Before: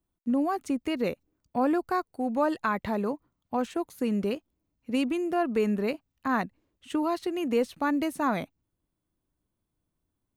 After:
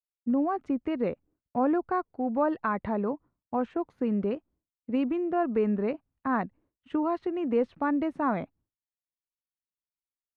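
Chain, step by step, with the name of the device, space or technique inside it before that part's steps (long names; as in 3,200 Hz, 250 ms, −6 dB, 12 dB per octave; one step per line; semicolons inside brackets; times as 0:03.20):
hearing-loss simulation (low-pass filter 1,600 Hz 12 dB per octave; downward expander −56 dBFS)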